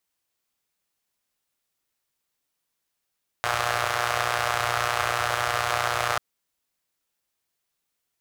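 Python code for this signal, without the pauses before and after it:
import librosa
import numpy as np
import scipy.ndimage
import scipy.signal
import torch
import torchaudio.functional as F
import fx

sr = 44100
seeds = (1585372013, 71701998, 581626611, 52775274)

y = fx.engine_four(sr, seeds[0], length_s=2.74, rpm=3600, resonances_hz=(95.0, 720.0, 1200.0))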